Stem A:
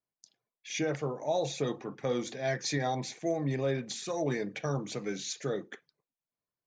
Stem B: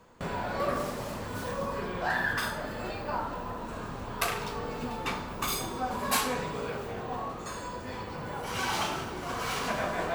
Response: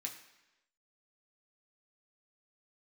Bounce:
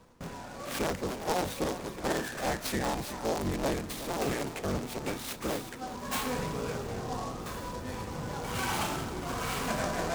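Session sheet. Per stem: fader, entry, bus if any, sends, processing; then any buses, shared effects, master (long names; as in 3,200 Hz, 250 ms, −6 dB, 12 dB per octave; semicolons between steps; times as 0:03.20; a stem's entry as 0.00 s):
−0.5 dB, 0.00 s, no send, echo send −12 dB, sub-harmonics by changed cycles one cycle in 3, inverted
−3.0 dB, 0.00 s, send −10.5 dB, no echo send, low-shelf EQ 270 Hz +8 dB; automatic ducking −12 dB, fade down 0.40 s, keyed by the first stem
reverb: on, RT60 1.0 s, pre-delay 3 ms
echo: single-tap delay 367 ms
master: short delay modulated by noise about 4,800 Hz, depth 0.042 ms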